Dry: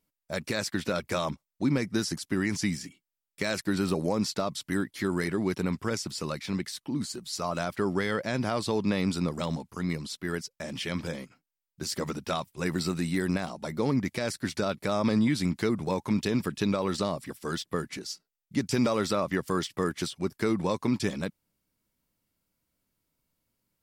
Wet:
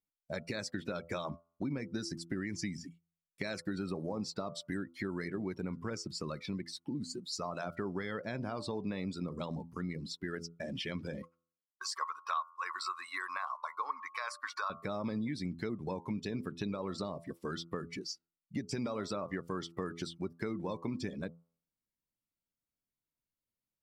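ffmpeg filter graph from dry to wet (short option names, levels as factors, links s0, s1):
-filter_complex "[0:a]asettb=1/sr,asplit=3[s0][s1][s2];[s0]atrim=end=11.224[s3];[s1]atrim=start=11.22:end=14.7,asetpts=PTS-STARTPTS,afade=t=in:d=0.004:c=qsin,afade=t=out:st=3.476:d=0.004:c=qsin,highpass=f=1100:t=q:w=11,agate=range=0.0224:threshold=0.00562:ratio=3:release=100:detection=peak[s4];[s2]atrim=start=14.696[s5];[s3][s4]acrossfade=d=0.004:c1=hsin:c2=qsin[s6];[s6][s5]acrossfade=d=0.004:c1=qsin:c2=hsin,bandreject=f=84.09:t=h:w=4,bandreject=f=168.18:t=h:w=4,bandreject=f=252.27:t=h:w=4,bandreject=f=336.36:t=h:w=4,bandreject=f=420.45:t=h:w=4,bandreject=f=504.54:t=h:w=4,bandreject=f=588.63:t=h:w=4,bandreject=f=672.72:t=h:w=4,bandreject=f=756.81:t=h:w=4,bandreject=f=840.9:t=h:w=4,bandreject=f=924.99:t=h:w=4,bandreject=f=1009.08:t=h:w=4,bandreject=f=1093.17:t=h:w=4,bandreject=f=1177.26:t=h:w=4,bandreject=f=1261.35:t=h:w=4,bandreject=f=1345.44:t=h:w=4,bandreject=f=1429.53:t=h:w=4,afftdn=nr=17:nf=-38,acompressor=threshold=0.0141:ratio=3"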